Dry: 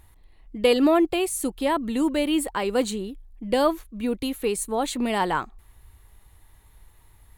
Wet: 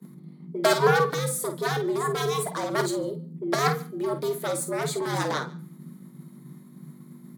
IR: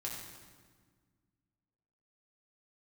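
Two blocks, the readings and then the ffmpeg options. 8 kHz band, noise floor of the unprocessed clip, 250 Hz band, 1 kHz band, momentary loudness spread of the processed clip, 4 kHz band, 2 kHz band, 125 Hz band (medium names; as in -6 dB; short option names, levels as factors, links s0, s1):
0.0 dB, -55 dBFS, -8.0 dB, 0.0 dB, 24 LU, -2.0 dB, +2.5 dB, +11.5 dB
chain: -filter_complex "[0:a]aeval=exprs='0.422*(cos(1*acos(clip(val(0)/0.422,-1,1)))-cos(1*PI/2))+0.168*(cos(7*acos(clip(val(0)/0.422,-1,1)))-cos(7*PI/2))':c=same,bandreject=f=373.1:t=h:w=4,bandreject=f=746.2:t=h:w=4,bandreject=f=1119.3:t=h:w=4,bandreject=f=1492.4:t=h:w=4,bandreject=f=1865.5:t=h:w=4,bandreject=f=2238.6:t=h:w=4,bandreject=f=2611.7:t=h:w=4,bandreject=f=2984.8:t=h:w=4,bandreject=f=3357.9:t=h:w=4,bandreject=f=3731:t=h:w=4,bandreject=f=4104.1:t=h:w=4,bandreject=f=4477.2:t=h:w=4,aeval=exprs='val(0)+0.00562*(sin(2*PI*50*n/s)+sin(2*PI*2*50*n/s)/2+sin(2*PI*3*50*n/s)/3+sin(2*PI*4*50*n/s)/4+sin(2*PI*5*50*n/s)/5)':c=same,equalizer=f=2600:t=o:w=0.44:g=-12.5,flanger=delay=3.6:depth=9.7:regen=-68:speed=0.37:shape=triangular,acompressor=mode=upward:threshold=0.00562:ratio=2.5,afreqshift=140,lowshelf=f=300:g=6,asplit=2[s0][s1];[s1]adelay=50,volume=0.335[s2];[s0][s2]amix=inputs=2:normalize=0,aecho=1:1:146:0.0631,agate=range=0.0224:threshold=0.00891:ratio=3:detection=peak"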